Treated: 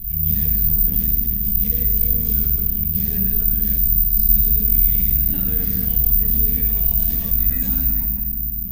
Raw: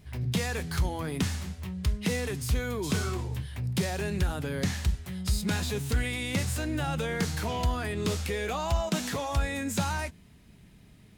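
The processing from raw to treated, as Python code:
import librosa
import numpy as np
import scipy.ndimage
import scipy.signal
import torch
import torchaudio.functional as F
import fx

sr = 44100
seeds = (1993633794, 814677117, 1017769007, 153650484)

y = fx.stretch_vocoder_free(x, sr, factor=0.52)
y = fx.room_shoebox(y, sr, seeds[0], volume_m3=630.0, walls='mixed', distance_m=5.6)
y = fx.stretch_grains(y, sr, factor=1.5, grain_ms=26.0)
y = fx.tone_stack(y, sr, knobs='10-0-1')
y = (np.kron(scipy.signal.resample_poly(y, 1, 3), np.eye(3)[0]) * 3)[:len(y)]
y = fx.env_flatten(y, sr, amount_pct=50)
y = y * 10.0 ** (2.0 / 20.0)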